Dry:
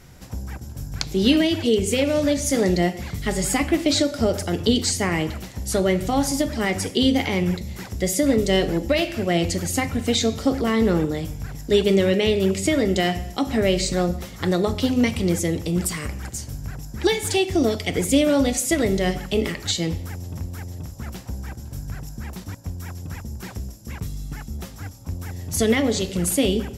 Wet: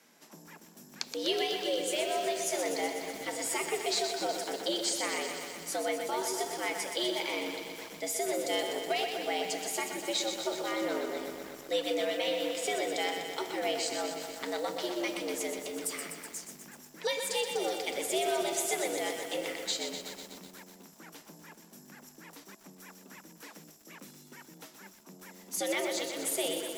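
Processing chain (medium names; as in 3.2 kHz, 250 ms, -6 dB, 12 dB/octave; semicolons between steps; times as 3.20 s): high-pass 550 Hz 6 dB/octave; frequency shift +100 Hz; bit-crushed delay 124 ms, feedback 80%, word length 7-bit, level -6.5 dB; trim -9 dB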